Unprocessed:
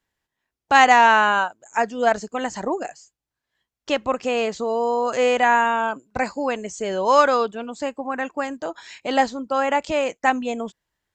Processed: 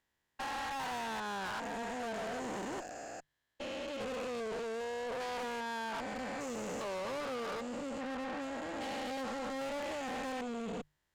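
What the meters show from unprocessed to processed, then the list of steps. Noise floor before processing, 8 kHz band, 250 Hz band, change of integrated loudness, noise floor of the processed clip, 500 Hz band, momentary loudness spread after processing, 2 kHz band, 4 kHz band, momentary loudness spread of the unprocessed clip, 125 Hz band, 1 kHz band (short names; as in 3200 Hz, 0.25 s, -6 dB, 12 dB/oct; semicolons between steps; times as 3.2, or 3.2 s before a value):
under -85 dBFS, -12.0 dB, -12.5 dB, -18.5 dB, -83 dBFS, -16.5 dB, 4 LU, -19.5 dB, -14.0 dB, 14 LU, n/a, -20.5 dB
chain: stepped spectrum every 0.4 s; compressor 6:1, threshold -25 dBFS, peak gain reduction 10.5 dB; tube stage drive 38 dB, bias 0.45; notches 50/100/150 Hz; gain +1 dB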